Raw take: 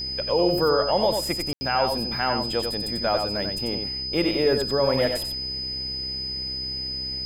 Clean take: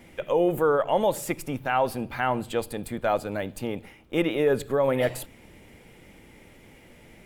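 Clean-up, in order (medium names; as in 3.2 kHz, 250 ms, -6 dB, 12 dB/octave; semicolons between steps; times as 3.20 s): de-hum 65.1 Hz, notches 7; band-stop 5 kHz, Q 30; room tone fill 1.53–1.61 s; inverse comb 92 ms -5.5 dB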